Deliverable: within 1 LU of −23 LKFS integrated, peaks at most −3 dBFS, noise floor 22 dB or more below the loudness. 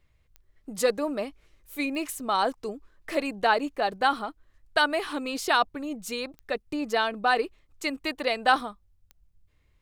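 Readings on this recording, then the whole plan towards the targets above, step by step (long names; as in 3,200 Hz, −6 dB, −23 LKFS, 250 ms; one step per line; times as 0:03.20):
number of clicks 4; integrated loudness −27.5 LKFS; sample peak −8.5 dBFS; target loudness −23.0 LKFS
→ click removal
level +4.5 dB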